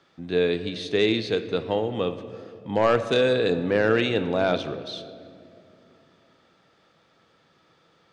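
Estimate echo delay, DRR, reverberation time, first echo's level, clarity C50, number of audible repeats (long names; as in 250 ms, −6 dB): no echo audible, 10.0 dB, 2.4 s, no echo audible, 12.0 dB, no echo audible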